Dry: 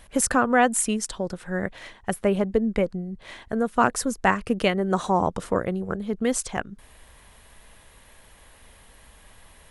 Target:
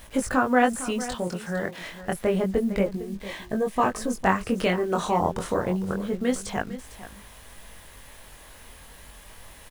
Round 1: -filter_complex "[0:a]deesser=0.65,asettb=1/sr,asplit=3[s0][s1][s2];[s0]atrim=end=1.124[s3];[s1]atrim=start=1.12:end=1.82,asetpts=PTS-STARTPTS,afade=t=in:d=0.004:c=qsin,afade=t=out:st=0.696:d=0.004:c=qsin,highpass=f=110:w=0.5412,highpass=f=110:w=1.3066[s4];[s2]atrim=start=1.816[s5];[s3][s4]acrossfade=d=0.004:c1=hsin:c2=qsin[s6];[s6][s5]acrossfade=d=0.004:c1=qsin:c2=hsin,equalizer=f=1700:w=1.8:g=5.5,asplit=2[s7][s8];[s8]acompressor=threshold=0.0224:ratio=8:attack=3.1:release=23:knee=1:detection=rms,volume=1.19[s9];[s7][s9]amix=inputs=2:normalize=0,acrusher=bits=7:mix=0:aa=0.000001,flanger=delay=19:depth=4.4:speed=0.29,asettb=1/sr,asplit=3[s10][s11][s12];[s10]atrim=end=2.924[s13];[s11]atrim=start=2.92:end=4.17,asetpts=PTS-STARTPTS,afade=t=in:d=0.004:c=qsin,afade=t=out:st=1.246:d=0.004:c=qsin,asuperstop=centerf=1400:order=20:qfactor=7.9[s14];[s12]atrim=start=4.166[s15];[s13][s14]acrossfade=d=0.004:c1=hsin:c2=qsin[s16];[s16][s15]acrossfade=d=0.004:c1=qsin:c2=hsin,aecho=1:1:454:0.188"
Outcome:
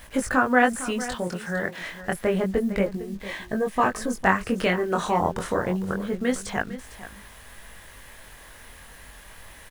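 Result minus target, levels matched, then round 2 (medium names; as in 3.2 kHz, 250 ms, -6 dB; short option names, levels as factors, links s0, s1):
2 kHz band +3.5 dB
-filter_complex "[0:a]deesser=0.65,asettb=1/sr,asplit=3[s0][s1][s2];[s0]atrim=end=1.124[s3];[s1]atrim=start=1.12:end=1.82,asetpts=PTS-STARTPTS,afade=t=in:d=0.004:c=qsin,afade=t=out:st=0.696:d=0.004:c=qsin,highpass=f=110:w=0.5412,highpass=f=110:w=1.3066[s4];[s2]atrim=start=1.816[s5];[s3][s4]acrossfade=d=0.004:c1=hsin:c2=qsin[s6];[s6][s5]acrossfade=d=0.004:c1=qsin:c2=hsin,asplit=2[s7][s8];[s8]acompressor=threshold=0.0224:ratio=8:attack=3.1:release=23:knee=1:detection=rms,volume=1.19[s9];[s7][s9]amix=inputs=2:normalize=0,acrusher=bits=7:mix=0:aa=0.000001,flanger=delay=19:depth=4.4:speed=0.29,asettb=1/sr,asplit=3[s10][s11][s12];[s10]atrim=end=2.924[s13];[s11]atrim=start=2.92:end=4.17,asetpts=PTS-STARTPTS,afade=t=in:d=0.004:c=qsin,afade=t=out:st=1.246:d=0.004:c=qsin,asuperstop=centerf=1400:order=20:qfactor=7.9[s14];[s12]atrim=start=4.166[s15];[s13][s14]acrossfade=d=0.004:c1=hsin:c2=qsin[s16];[s16][s15]acrossfade=d=0.004:c1=qsin:c2=hsin,aecho=1:1:454:0.188"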